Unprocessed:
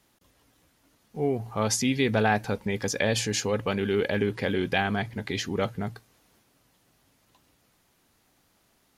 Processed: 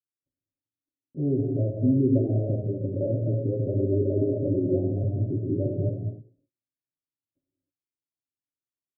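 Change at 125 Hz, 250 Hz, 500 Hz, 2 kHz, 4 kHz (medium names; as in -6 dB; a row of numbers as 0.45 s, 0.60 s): +7.5 dB, +3.5 dB, 0.0 dB, under -40 dB, under -40 dB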